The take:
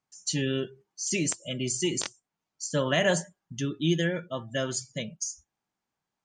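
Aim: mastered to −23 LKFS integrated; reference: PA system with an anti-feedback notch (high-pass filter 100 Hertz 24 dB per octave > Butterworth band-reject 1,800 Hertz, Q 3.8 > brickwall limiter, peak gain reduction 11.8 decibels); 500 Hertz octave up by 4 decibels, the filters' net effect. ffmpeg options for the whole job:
ffmpeg -i in.wav -af "highpass=frequency=100:width=0.5412,highpass=frequency=100:width=1.3066,asuperstop=centerf=1800:order=8:qfactor=3.8,equalizer=frequency=500:width_type=o:gain=5,volume=10dB,alimiter=limit=-12dB:level=0:latency=1" out.wav

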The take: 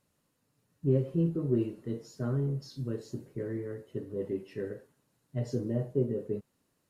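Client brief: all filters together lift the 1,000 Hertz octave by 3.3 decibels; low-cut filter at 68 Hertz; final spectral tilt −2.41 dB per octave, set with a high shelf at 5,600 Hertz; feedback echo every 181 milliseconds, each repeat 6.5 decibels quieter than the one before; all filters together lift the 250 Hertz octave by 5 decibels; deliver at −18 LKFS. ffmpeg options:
ffmpeg -i in.wav -af "highpass=68,equalizer=frequency=250:width_type=o:gain=6.5,equalizer=frequency=1000:width_type=o:gain=4.5,highshelf=frequency=5600:gain=-7,aecho=1:1:181|362|543|724|905|1086:0.473|0.222|0.105|0.0491|0.0231|0.0109,volume=11.5dB" out.wav

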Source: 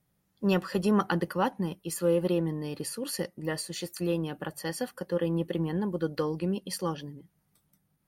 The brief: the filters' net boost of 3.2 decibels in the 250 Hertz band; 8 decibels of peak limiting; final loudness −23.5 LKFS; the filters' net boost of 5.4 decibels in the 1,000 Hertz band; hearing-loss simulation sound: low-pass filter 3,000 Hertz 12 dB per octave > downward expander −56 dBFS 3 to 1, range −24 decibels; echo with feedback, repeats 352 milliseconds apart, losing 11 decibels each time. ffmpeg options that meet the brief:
ffmpeg -i in.wav -af "equalizer=frequency=250:width_type=o:gain=4.5,equalizer=frequency=1000:width_type=o:gain=6.5,alimiter=limit=-17dB:level=0:latency=1,lowpass=3000,aecho=1:1:352|704|1056:0.282|0.0789|0.0221,agate=range=-24dB:threshold=-56dB:ratio=3,volume=6dB" out.wav

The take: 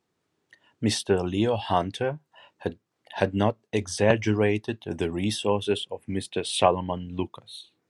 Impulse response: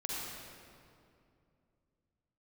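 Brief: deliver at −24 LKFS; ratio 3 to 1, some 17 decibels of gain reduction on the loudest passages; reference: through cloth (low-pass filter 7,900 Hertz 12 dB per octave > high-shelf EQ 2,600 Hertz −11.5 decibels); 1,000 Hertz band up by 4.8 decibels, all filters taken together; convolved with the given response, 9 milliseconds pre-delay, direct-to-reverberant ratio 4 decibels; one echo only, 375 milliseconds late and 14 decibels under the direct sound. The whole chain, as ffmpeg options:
-filter_complex "[0:a]equalizer=frequency=1000:width_type=o:gain=8,acompressor=threshold=-33dB:ratio=3,aecho=1:1:375:0.2,asplit=2[link_01][link_02];[1:a]atrim=start_sample=2205,adelay=9[link_03];[link_02][link_03]afir=irnorm=-1:irlink=0,volume=-7dB[link_04];[link_01][link_04]amix=inputs=2:normalize=0,lowpass=7900,highshelf=frequency=2600:gain=-11.5,volume=11dB"

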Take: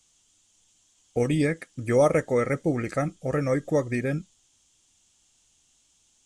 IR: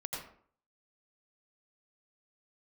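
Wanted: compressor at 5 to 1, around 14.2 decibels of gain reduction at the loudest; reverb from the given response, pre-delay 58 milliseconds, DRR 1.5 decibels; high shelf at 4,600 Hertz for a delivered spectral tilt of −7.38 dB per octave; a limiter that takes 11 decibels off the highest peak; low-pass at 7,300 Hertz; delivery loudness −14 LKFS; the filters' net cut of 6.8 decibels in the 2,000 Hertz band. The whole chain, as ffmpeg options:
-filter_complex "[0:a]lowpass=7300,equalizer=frequency=2000:width_type=o:gain=-9,highshelf=frequency=4600:gain=6,acompressor=threshold=-32dB:ratio=5,alimiter=level_in=9dB:limit=-24dB:level=0:latency=1,volume=-9dB,asplit=2[link_01][link_02];[1:a]atrim=start_sample=2205,adelay=58[link_03];[link_02][link_03]afir=irnorm=-1:irlink=0,volume=-2.5dB[link_04];[link_01][link_04]amix=inputs=2:normalize=0,volume=25dB"

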